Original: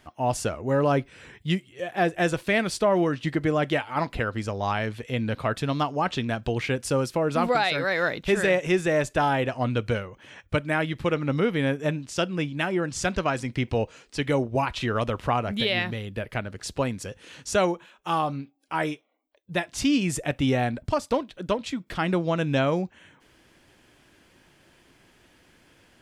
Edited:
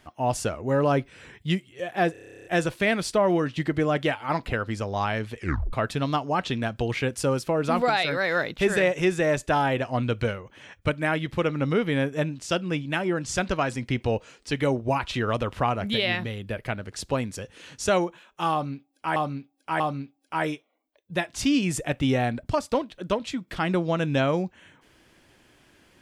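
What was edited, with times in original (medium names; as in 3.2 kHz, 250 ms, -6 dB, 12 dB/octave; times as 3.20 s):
2.12 s: stutter 0.03 s, 12 plays
5.04 s: tape stop 0.36 s
18.19–18.83 s: loop, 3 plays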